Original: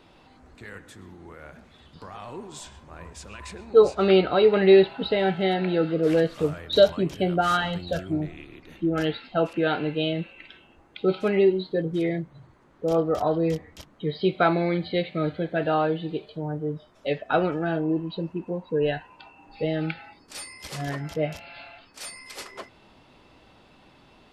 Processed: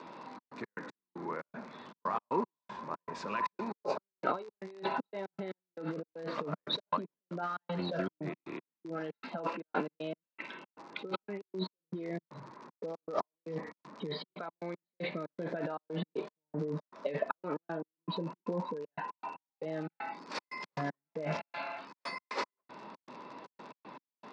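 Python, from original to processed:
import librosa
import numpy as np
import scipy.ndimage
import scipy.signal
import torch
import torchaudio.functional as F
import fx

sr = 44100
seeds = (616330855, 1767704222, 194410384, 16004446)

y = fx.high_shelf(x, sr, hz=3400.0, db=-11.0)
y = fx.notch(y, sr, hz=740.0, q=12.0)
y = fx.over_compress(y, sr, threshold_db=-34.0, ratio=-1.0)
y = fx.dmg_crackle(y, sr, seeds[0], per_s=80.0, level_db=-36.0)
y = fx.step_gate(y, sr, bpm=117, pattern='xxx.x.x..xx.', floor_db=-60.0, edge_ms=4.5)
y = fx.cabinet(y, sr, low_hz=180.0, low_slope=24, high_hz=5400.0, hz=(320.0, 1000.0, 3100.0), db=(-3, 9, -8))
y = y * librosa.db_to_amplitude(-1.5)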